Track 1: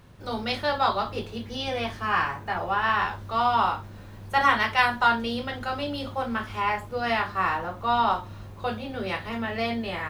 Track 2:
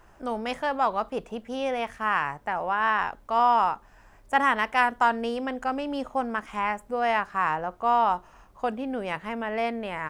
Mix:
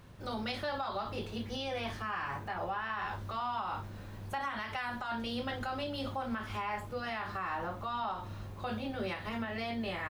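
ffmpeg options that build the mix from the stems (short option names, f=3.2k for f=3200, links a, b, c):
-filter_complex "[0:a]volume=-2.5dB[a];[1:a]adelay=1.3,volume=-15.5dB,asplit=2[b][c];[c]apad=whole_len=445021[d];[a][d]sidechaincompress=threshold=-45dB:ratio=4:attack=16:release=112[e];[e][b]amix=inputs=2:normalize=0,alimiter=level_in=3dB:limit=-24dB:level=0:latency=1:release=155,volume=-3dB"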